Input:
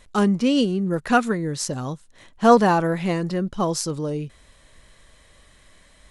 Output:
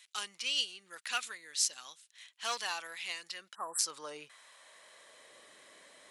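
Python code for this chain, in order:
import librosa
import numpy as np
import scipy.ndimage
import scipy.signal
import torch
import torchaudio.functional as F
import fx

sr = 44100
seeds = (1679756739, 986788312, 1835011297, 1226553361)

p1 = fx.spec_erase(x, sr, start_s=3.55, length_s=0.24, low_hz=1900.0, high_hz=7500.0)
p2 = np.clip(p1, -10.0 ** (-12.5 / 20.0), 10.0 ** (-12.5 / 20.0))
p3 = p1 + (p2 * librosa.db_to_amplitude(-7.5))
p4 = fx.filter_sweep_highpass(p3, sr, from_hz=2600.0, to_hz=390.0, start_s=3.3, end_s=5.37, q=1.2)
p5 = fx.dynamic_eq(p4, sr, hz=1700.0, q=1.2, threshold_db=-40.0, ratio=4.0, max_db=-4)
y = p5 * librosa.db_to_amplitude(-5.0)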